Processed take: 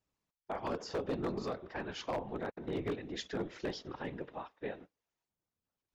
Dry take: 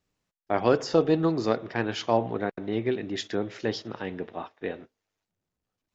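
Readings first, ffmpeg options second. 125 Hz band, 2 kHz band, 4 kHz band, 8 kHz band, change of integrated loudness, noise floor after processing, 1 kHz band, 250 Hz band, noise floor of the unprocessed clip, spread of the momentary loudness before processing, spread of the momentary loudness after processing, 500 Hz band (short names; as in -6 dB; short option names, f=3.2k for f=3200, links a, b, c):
-11.5 dB, -10.0 dB, -9.5 dB, n/a, -12.0 dB, under -85 dBFS, -11.0 dB, -12.0 dB, under -85 dBFS, 13 LU, 7 LU, -12.5 dB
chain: -af "equalizer=f=1k:w=2.8:g=4,alimiter=limit=-15.5dB:level=0:latency=1:release=305,afftfilt=real='hypot(re,im)*cos(2*PI*random(0))':imag='hypot(re,im)*sin(2*PI*random(1))':win_size=512:overlap=0.75,aeval=exprs='0.0501*(abs(mod(val(0)/0.0501+3,4)-2)-1)':c=same,volume=-2dB"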